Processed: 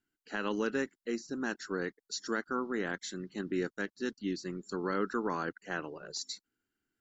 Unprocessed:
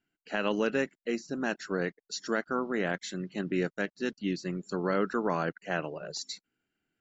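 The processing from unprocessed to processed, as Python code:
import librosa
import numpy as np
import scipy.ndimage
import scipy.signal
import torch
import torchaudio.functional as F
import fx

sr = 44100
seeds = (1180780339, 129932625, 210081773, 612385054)

y = fx.graphic_eq_15(x, sr, hz=(160, 630, 2500), db=(-9, -11, -9))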